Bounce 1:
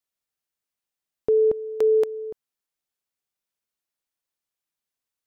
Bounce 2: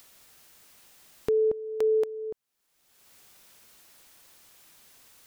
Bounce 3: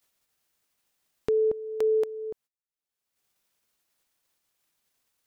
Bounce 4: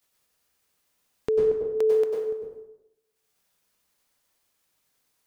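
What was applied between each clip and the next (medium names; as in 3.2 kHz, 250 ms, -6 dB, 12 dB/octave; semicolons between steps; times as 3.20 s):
upward compressor, threshold -23 dBFS; trim -5 dB
gate -53 dBFS, range -26 dB
plate-style reverb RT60 0.88 s, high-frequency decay 0.7×, pre-delay 85 ms, DRR -1.5 dB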